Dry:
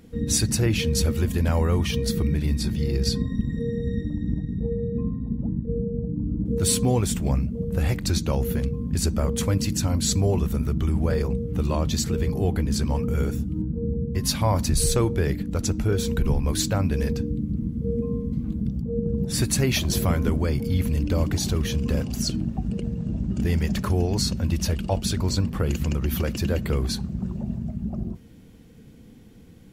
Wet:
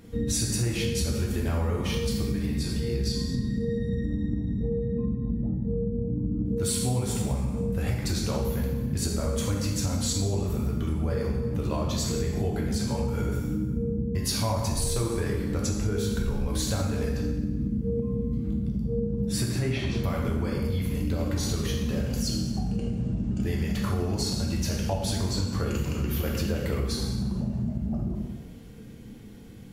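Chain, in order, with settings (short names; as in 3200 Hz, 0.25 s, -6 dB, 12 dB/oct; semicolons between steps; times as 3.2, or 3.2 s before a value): 19.41–20.04 LPF 2600 Hz 12 dB/oct; plate-style reverb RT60 1.2 s, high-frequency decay 0.85×, DRR -2 dB; compressor 4:1, threshold -25 dBFS, peak gain reduction 12 dB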